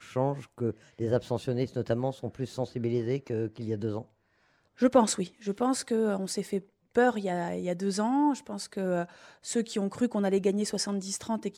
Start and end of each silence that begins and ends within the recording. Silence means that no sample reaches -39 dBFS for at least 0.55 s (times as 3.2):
4.02–4.8